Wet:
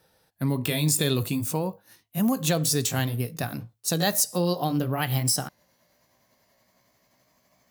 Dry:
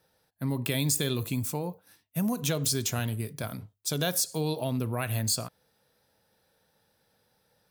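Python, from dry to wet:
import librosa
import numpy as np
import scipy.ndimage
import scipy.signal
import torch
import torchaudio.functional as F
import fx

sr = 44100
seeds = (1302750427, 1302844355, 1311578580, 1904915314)

y = fx.pitch_glide(x, sr, semitones=4.0, runs='starting unshifted')
y = F.gain(torch.from_numpy(y), 5.5).numpy()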